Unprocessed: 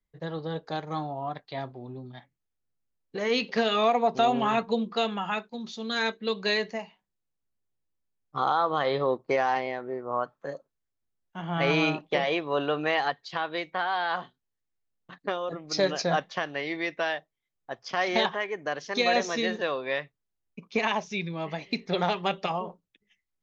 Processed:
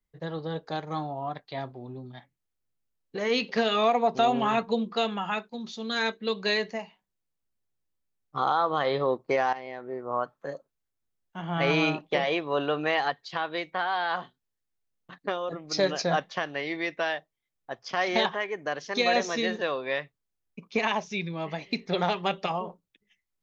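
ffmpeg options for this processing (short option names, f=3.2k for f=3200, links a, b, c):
-filter_complex "[0:a]asplit=2[a][b];[a]atrim=end=9.53,asetpts=PTS-STARTPTS,afade=t=out:st=9.526:d=0.004:c=hsin:silence=0.211349[c];[b]atrim=start=9.53,asetpts=PTS-STARTPTS,afade=t=in:d=0.51:silence=0.211349[d];[c][d]concat=n=2:v=0:a=1"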